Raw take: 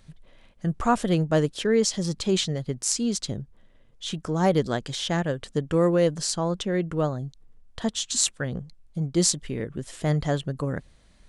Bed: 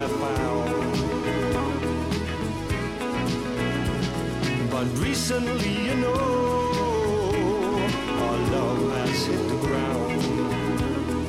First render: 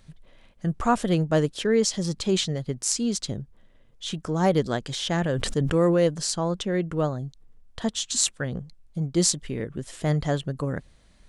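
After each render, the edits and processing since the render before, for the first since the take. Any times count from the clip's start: 4.87–6.07 sustainer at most 26 dB/s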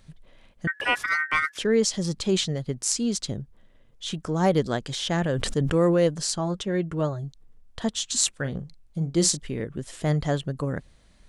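0.67–1.58 ring modulator 1700 Hz; 6.38–7.24 notch comb 250 Hz; 8.29–9.37 doubler 43 ms -13 dB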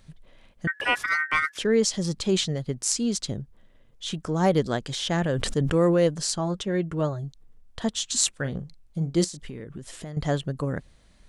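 9.24–10.17 compressor 12:1, threshold -32 dBFS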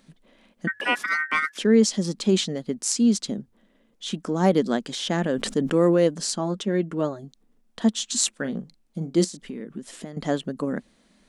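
resonant low shelf 150 Hz -13 dB, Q 3; de-hum 53.55 Hz, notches 2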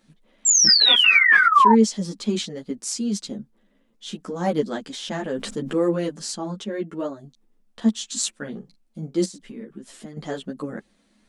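0.45–1.74 painted sound fall 870–7600 Hz -12 dBFS; ensemble effect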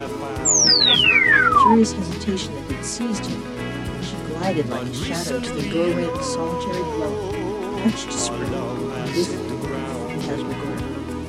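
add bed -2.5 dB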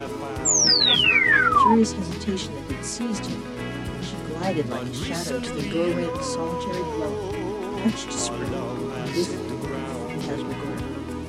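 gain -3 dB

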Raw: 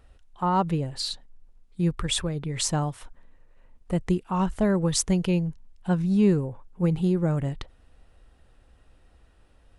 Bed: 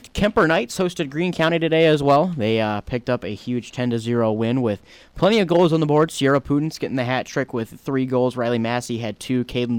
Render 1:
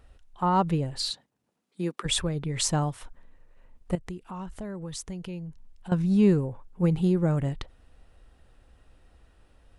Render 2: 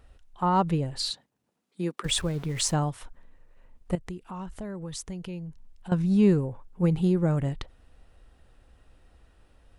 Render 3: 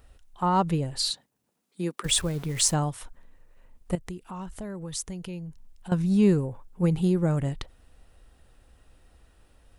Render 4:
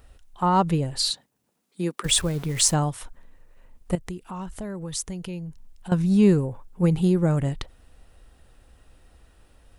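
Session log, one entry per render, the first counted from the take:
1.09–2.04 HPF 85 Hz -> 280 Hz 24 dB/oct; 3.95–5.92 compressor 2.5:1, threshold -40 dBFS
2.04–2.74 sample gate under -42.5 dBFS
high shelf 6700 Hz +9.5 dB
gain +3 dB

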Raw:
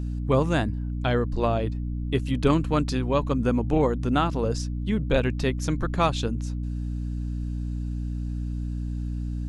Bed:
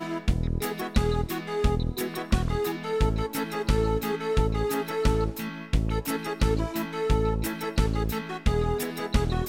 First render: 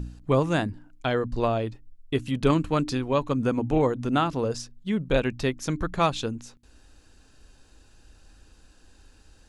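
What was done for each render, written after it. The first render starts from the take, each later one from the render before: de-hum 60 Hz, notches 5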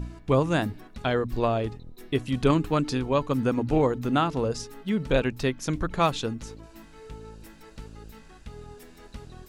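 add bed -18.5 dB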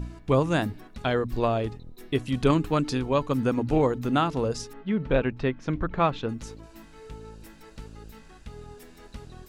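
4.73–6.29 LPF 2500 Hz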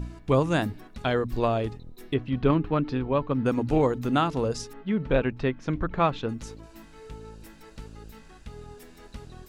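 2.14–3.46 air absorption 320 m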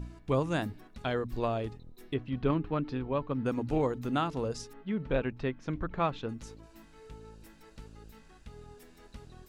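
gain -6.5 dB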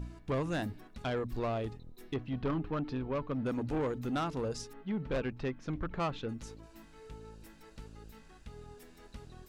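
soft clip -27.5 dBFS, distortion -11 dB

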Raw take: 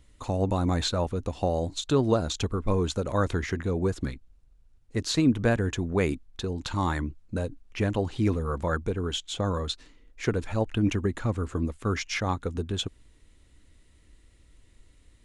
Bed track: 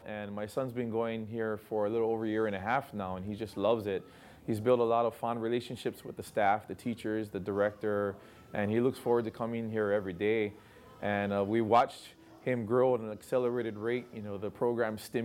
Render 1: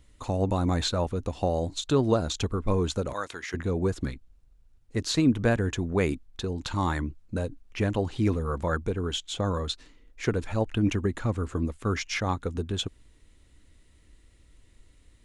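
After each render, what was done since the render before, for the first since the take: 3.13–3.54 HPF 1400 Hz 6 dB/oct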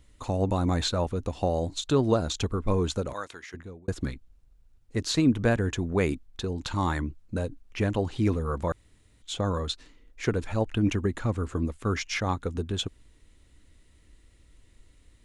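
2.94–3.88 fade out; 8.72–9.22 room tone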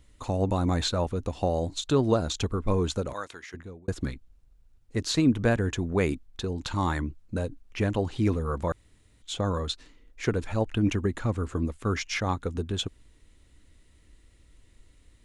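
nothing audible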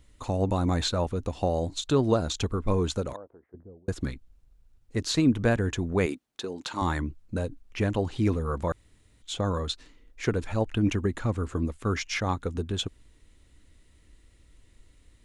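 3.16–3.87 ladder low-pass 790 Hz, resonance 30%; 6.06–6.82 HPF 280 Hz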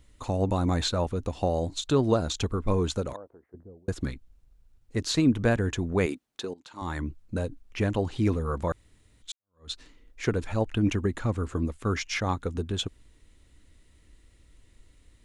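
6.54–7.08 fade in quadratic, from -16 dB; 9.32–9.72 fade in exponential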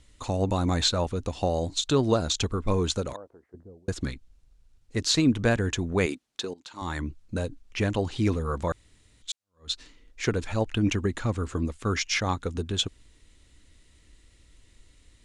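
Bessel low-pass 6600 Hz, order 2; high shelf 3100 Hz +10.5 dB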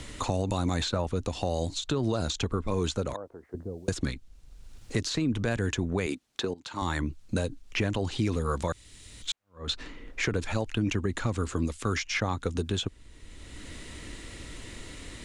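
limiter -19.5 dBFS, peak gain reduction 8.5 dB; three-band squash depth 70%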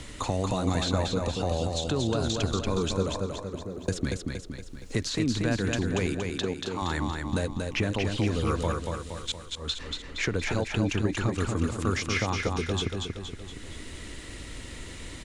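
feedback echo 0.234 s, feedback 52%, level -4 dB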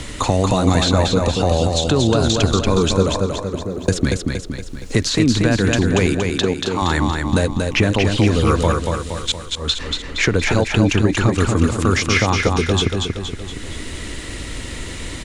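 gain +11.5 dB; limiter -3 dBFS, peak gain reduction 3 dB

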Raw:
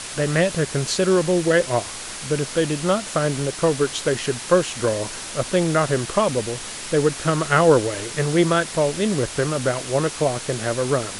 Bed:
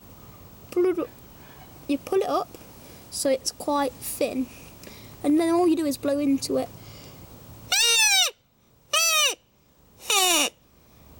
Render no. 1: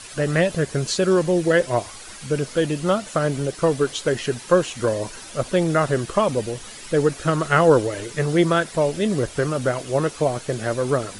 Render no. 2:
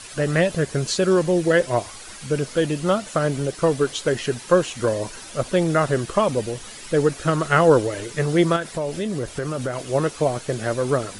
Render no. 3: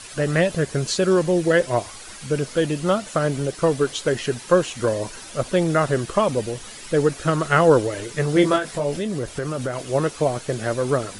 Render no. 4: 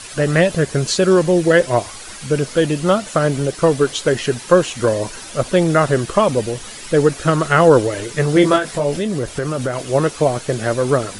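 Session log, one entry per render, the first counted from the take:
denoiser 10 dB, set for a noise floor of -33 dBFS
8.56–9.84 compressor 4:1, threshold -22 dBFS
8.34–8.97 doubler 21 ms -4 dB
gain +5 dB; limiter -1 dBFS, peak gain reduction 2 dB

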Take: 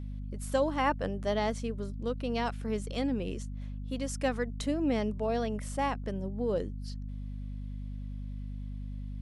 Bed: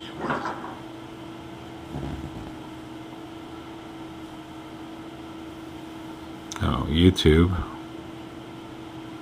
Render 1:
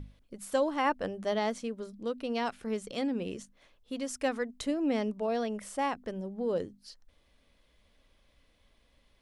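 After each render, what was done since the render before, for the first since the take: notches 50/100/150/200/250 Hz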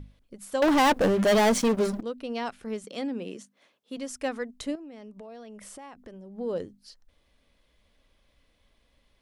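0.62–2.01 sample leveller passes 5; 2.84–3.97 HPF 170 Hz 24 dB/oct; 4.75–6.37 compressor 20:1, threshold -40 dBFS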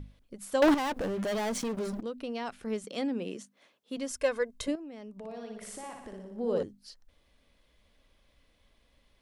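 0.74–2.59 compressor, threshold -31 dBFS; 4.11–4.68 comb 1.9 ms, depth 69%; 5.18–6.63 flutter echo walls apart 10.2 m, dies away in 0.82 s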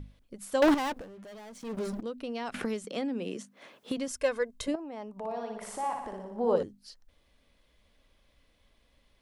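0.88–1.77 dip -15.5 dB, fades 0.17 s; 2.54–4.08 three-band squash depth 100%; 4.74–6.56 bell 890 Hz +14 dB 1.1 oct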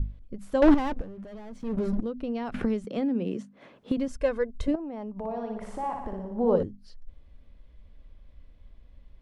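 RIAA curve playback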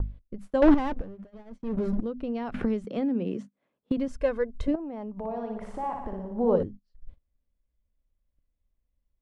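gate -40 dBFS, range -25 dB; high shelf 4600 Hz -7.5 dB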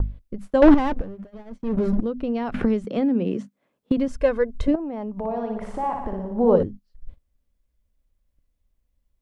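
gain +6 dB; limiter -3 dBFS, peak gain reduction 1.5 dB

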